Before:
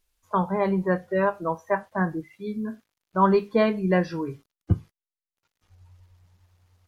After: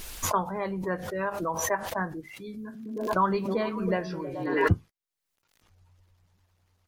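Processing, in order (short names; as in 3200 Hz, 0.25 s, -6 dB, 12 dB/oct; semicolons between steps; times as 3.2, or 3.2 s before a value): harmonic-percussive split harmonic -8 dB; 2.64–4.72 delay with a stepping band-pass 0.107 s, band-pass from 180 Hz, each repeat 0.7 oct, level -4.5 dB; backwards sustainer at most 48 dB/s; gain -1.5 dB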